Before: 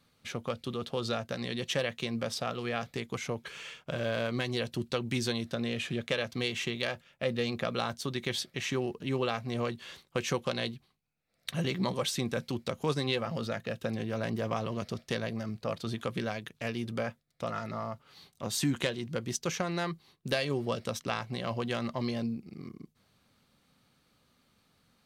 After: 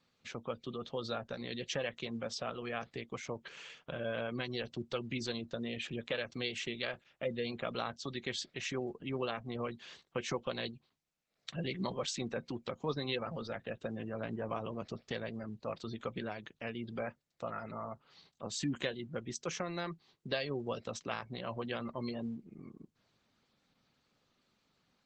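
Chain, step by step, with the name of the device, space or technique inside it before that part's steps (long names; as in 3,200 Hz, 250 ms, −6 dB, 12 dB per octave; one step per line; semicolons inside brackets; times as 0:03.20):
noise-suppressed video call (high-pass filter 140 Hz 6 dB per octave; gate on every frequency bin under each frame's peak −25 dB strong; level −4.5 dB; Opus 12 kbit/s 48,000 Hz)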